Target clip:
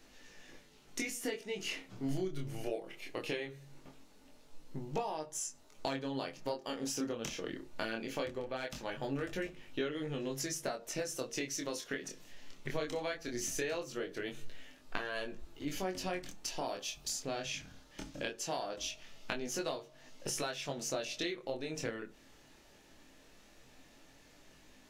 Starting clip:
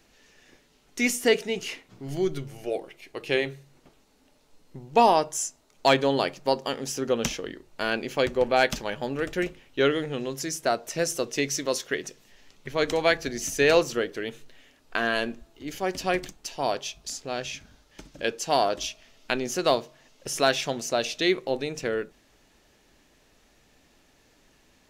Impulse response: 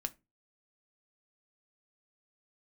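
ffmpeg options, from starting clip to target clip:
-filter_complex "[0:a]asettb=1/sr,asplit=3[link_01][link_02][link_03];[link_01]atrim=end=16.664[link_04];[link_02]atrim=start=16.66:end=17.24,asetpts=PTS-STARTPTS,afade=type=in:duration=0.004:curve=qsin,afade=type=out:start_time=0.576:duration=0.004:curve=qsin,highshelf=frequency=12000:gain=11.5[link_05];[link_03]atrim=start=17.236[link_06];[link_04][link_05]acrossfade=duration=0.004:curve1=hsin:curve2=qsin[link_07];[link_07][link_06]acrossfade=duration=0.004:curve1=qsin:curve2=hsin,acompressor=threshold=-34dB:ratio=12,flanger=delay=19.5:depth=7.4:speed=0.2,asplit=2[link_08][link_09];[1:a]atrim=start_sample=2205[link_10];[link_09][link_10]afir=irnorm=-1:irlink=0,volume=8dB[link_11];[link_08][link_11]amix=inputs=2:normalize=0,volume=-7.5dB"

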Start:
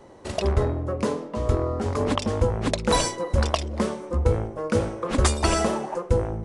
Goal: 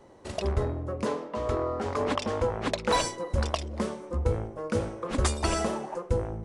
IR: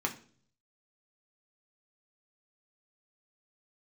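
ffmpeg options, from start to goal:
-filter_complex "[0:a]asettb=1/sr,asplit=3[link_01][link_02][link_03];[link_01]atrim=end=1.064[link_04];[link_02]atrim=start=1.06:end=3.02,asetpts=PTS-STARTPTS,afade=type=in:duration=0.004:curve=qsin,afade=type=out:start_time=1.956:duration=0.004:curve=qsin,asplit=2[link_05][link_06];[link_06]highpass=frequency=720:poles=1,volume=12dB,asoftclip=type=tanh:threshold=-7dB[link_07];[link_05][link_07]amix=inputs=2:normalize=0,lowpass=frequency=3000:poles=1,volume=-6dB[link_08];[link_03]atrim=start=3.016[link_09];[link_04][link_08]acrossfade=duration=0.004:curve1=hsin:curve2=qsin[link_10];[link_10][link_09]acrossfade=duration=0.004:curve1=qsin:curve2=hsin,volume=-5.5dB"

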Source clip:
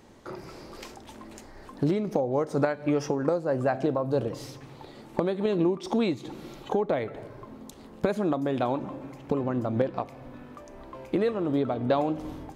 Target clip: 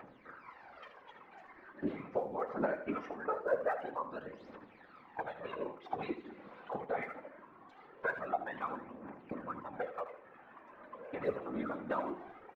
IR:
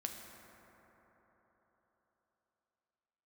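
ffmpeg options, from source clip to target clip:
-filter_complex "[0:a]lowpass=frequency=1800:width=0.5412,lowpass=frequency=1800:width=1.3066,aderivative,aecho=1:1:3.9:0.95,acompressor=mode=upward:threshold=-59dB:ratio=2.5,aphaser=in_gain=1:out_gain=1:delay=4.3:decay=0.75:speed=0.22:type=triangular,afftfilt=real='hypot(re,im)*cos(2*PI*random(0))':imag='hypot(re,im)*sin(2*PI*random(1))':win_size=512:overlap=0.75,asplit=2[link_01][link_02];[link_02]aecho=0:1:79|158|237:0.266|0.0825|0.0256[link_03];[link_01][link_03]amix=inputs=2:normalize=0,volume=11.5dB"

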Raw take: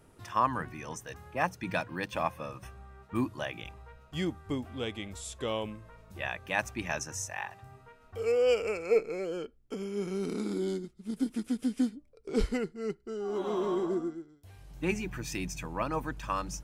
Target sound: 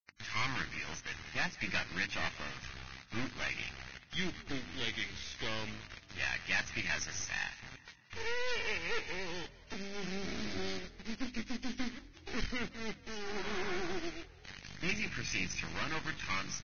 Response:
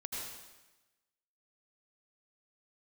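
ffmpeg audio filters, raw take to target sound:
-filter_complex "[0:a]aresample=16000,asoftclip=type=tanh:threshold=-28.5dB,aresample=44100,acrusher=bits=5:dc=4:mix=0:aa=0.000001,bandreject=frequency=50:width_type=h:width=6,bandreject=frequency=100:width_type=h:width=6,bandreject=frequency=150:width_type=h:width=6,bandreject=frequency=200:width_type=h:width=6,bandreject=frequency=250:width_type=h:width=6,bandreject=frequency=300:width_type=h:width=6,aeval=exprs='0.0501*(cos(1*acos(clip(val(0)/0.0501,-1,1)))-cos(1*PI/2))+0.000398*(cos(3*acos(clip(val(0)/0.0501,-1,1)))-cos(3*PI/2))+0.001*(cos(8*acos(clip(val(0)/0.0501,-1,1)))-cos(8*PI/2))':channel_layout=same,asplit=5[link_01][link_02][link_03][link_04][link_05];[link_02]adelay=175,afreqshift=40,volume=-18.5dB[link_06];[link_03]adelay=350,afreqshift=80,volume=-24.2dB[link_07];[link_04]adelay=525,afreqshift=120,volume=-29.9dB[link_08];[link_05]adelay=700,afreqshift=160,volume=-35.5dB[link_09];[link_01][link_06][link_07][link_08][link_09]amix=inputs=5:normalize=0,asplit=2[link_10][link_11];[link_11]acompressor=threshold=-55dB:ratio=16,volume=-3dB[link_12];[link_10][link_12]amix=inputs=2:normalize=0,aeval=exprs='0.0376*(cos(1*acos(clip(val(0)/0.0376,-1,1)))-cos(1*PI/2))+0.00841*(cos(2*acos(clip(val(0)/0.0376,-1,1)))-cos(2*PI/2))':channel_layout=same,equalizer=frequency=500:width_type=o:width=1:gain=-7,equalizer=frequency=1000:width_type=o:width=1:gain=-5,equalizer=frequency=2000:width_type=o:width=1:gain=9,equalizer=frequency=4000:width_type=o:width=1:gain=3" -ar 16000 -c:a libvorbis -b:a 16k

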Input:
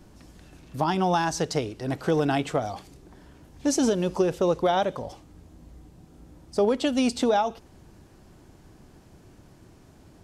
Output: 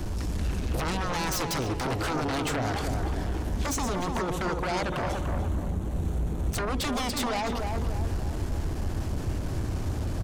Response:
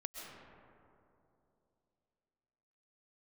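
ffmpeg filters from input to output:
-filter_complex "[0:a]acrossover=split=380|3000[link_01][link_02][link_03];[link_02]acompressor=threshold=-30dB:ratio=6[link_04];[link_01][link_04][link_03]amix=inputs=3:normalize=0,lowshelf=frequency=110:width_type=q:width=1.5:gain=8,acompressor=threshold=-37dB:ratio=8,asettb=1/sr,asplit=3[link_05][link_06][link_07];[link_05]atrim=end=3.704[link_08];[link_06]atrim=start=3.7:end=6.64,asetpts=PTS-STARTPTS,afade=type=in:duration=0.004:curve=qsin,afade=type=out:start_time=2.936:duration=0.004:curve=qsin,equalizer=frequency=5000:width=6.2:gain=-13.5[link_09];[link_07]atrim=start=6.636[link_10];[link_08][link_09]acrossfade=duration=0.004:curve1=hsin:curve2=qsin[link_11];[link_11][link_10]acrossfade=duration=0.004:curve1=qsin:curve2=hsin,aeval=exprs='0.0473*sin(PI/2*5.01*val(0)/0.0473)':channel_layout=same,asplit=2[link_12][link_13];[link_13]adelay=293,lowpass=frequency=1600:poles=1,volume=-3.5dB,asplit=2[link_14][link_15];[link_15]adelay=293,lowpass=frequency=1600:poles=1,volume=0.49,asplit=2[link_16][link_17];[link_17]adelay=293,lowpass=frequency=1600:poles=1,volume=0.49,asplit=2[link_18][link_19];[link_19]adelay=293,lowpass=frequency=1600:poles=1,volume=0.49,asplit=2[link_20][link_21];[link_21]adelay=293,lowpass=frequency=1600:poles=1,volume=0.49,asplit=2[link_22][link_23];[link_23]adelay=293,lowpass=frequency=1600:poles=1,volume=0.49[link_24];[link_12][link_14][link_16][link_18][link_20][link_22][link_24]amix=inputs=7:normalize=0"

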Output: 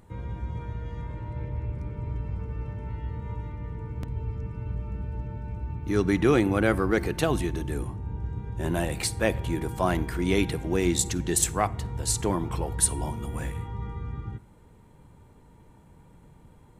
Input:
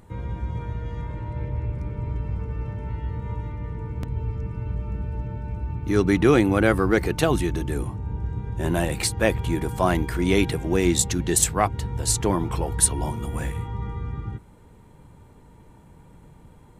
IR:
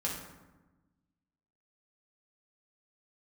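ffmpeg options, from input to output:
-filter_complex "[0:a]asplit=2[link_01][link_02];[1:a]atrim=start_sample=2205,asetrate=57330,aresample=44100,adelay=50[link_03];[link_02][link_03]afir=irnorm=-1:irlink=0,volume=-21.5dB[link_04];[link_01][link_04]amix=inputs=2:normalize=0,volume=-4dB"

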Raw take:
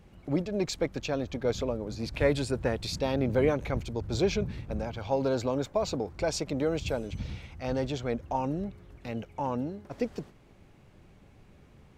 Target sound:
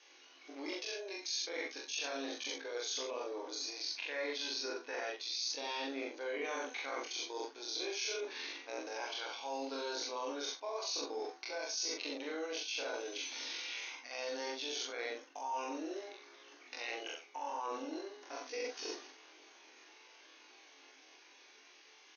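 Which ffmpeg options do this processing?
ffmpeg -i in.wav -filter_complex "[0:a]aderivative,bandreject=frequency=1300:width=16,aecho=1:1:25|39|51:0.708|0.211|0.251,afftfilt=real='re*between(b*sr/4096,250,6600)':imag='im*between(b*sr/4096,250,6600)':win_size=4096:overlap=0.75,equalizer=frequency=590:width=5:gain=-6,bandreject=frequency=376.7:width_type=h:width=4,bandreject=frequency=753.4:width_type=h:width=4,bandreject=frequency=1130.1:width_type=h:width=4,bandreject=frequency=1506.8:width_type=h:width=4,acrossover=split=1500[link_01][link_02];[link_01]dynaudnorm=framelen=450:gausssize=5:maxgain=5dB[link_03];[link_03][link_02]amix=inputs=2:normalize=0,atempo=0.54,asplit=2[link_04][link_05];[link_05]adelay=41,volume=-3.5dB[link_06];[link_04][link_06]amix=inputs=2:normalize=0,areverse,acompressor=threshold=-52dB:ratio=5,areverse,volume=14dB" out.wav

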